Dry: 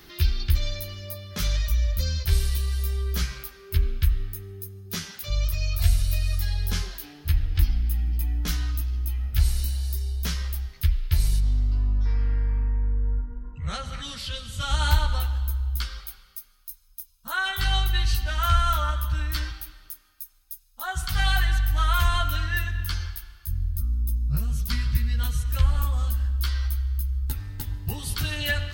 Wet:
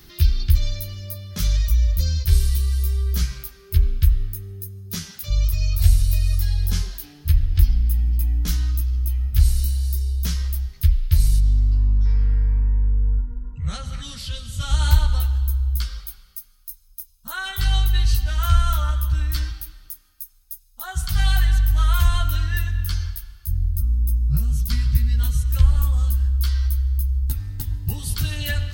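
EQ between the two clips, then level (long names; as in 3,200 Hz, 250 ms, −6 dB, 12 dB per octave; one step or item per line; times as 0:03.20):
bass and treble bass +9 dB, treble +7 dB
−3.5 dB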